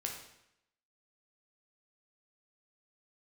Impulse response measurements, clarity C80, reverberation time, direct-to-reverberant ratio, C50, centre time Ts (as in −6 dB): 7.5 dB, 0.80 s, 0.0 dB, 4.5 dB, 33 ms